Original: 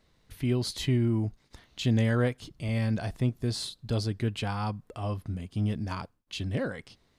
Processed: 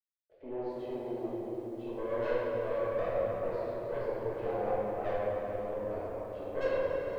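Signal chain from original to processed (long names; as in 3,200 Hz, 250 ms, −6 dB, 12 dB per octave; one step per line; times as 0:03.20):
spectral tilt −2.5 dB per octave
brickwall limiter −16 dBFS, peak gain reduction 7.5 dB
0:02.22–0:03.57: leveller curve on the samples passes 1
in parallel at −1 dB: downward compressor, threshold −23 dBFS, peak gain reduction 4.5 dB
on the sum: dead-zone distortion −40.5 dBFS
four-pole ladder band-pass 620 Hz, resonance 60%
phaser with its sweep stopped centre 450 Hz, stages 4
tube saturation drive 39 dB, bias 0.6
feedback delay with all-pass diffusion 453 ms, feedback 49%, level −11 dB
rectangular room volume 220 cubic metres, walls hard, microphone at 1.5 metres
feedback echo at a low word length 277 ms, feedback 35%, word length 10 bits, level −13.5 dB
level +2.5 dB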